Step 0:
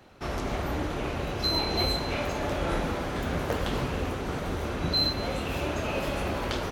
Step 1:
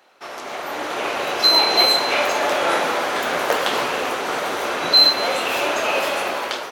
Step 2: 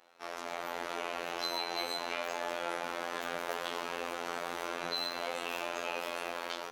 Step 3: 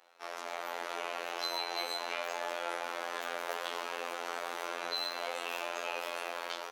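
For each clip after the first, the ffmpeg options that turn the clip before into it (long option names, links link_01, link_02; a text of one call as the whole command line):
ffmpeg -i in.wav -af "highpass=580,dynaudnorm=framelen=330:gausssize=5:maxgain=11.5dB,volume=2.5dB" out.wav
ffmpeg -i in.wav -af "afftfilt=real='hypot(re,im)*cos(PI*b)':imag='0':win_size=2048:overlap=0.75,acompressor=threshold=-26dB:ratio=4,volume=-5.5dB" out.wav
ffmpeg -i in.wav -af "highpass=400" out.wav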